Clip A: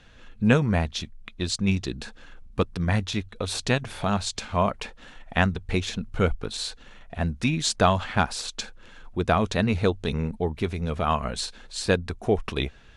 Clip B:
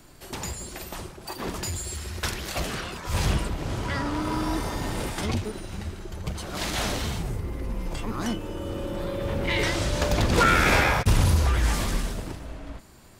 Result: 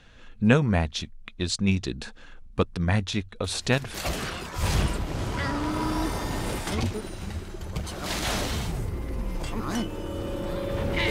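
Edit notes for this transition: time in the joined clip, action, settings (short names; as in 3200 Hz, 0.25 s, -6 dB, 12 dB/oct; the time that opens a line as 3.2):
clip A
3.44 add clip B from 1.95 s 0.50 s -13.5 dB
3.94 switch to clip B from 2.45 s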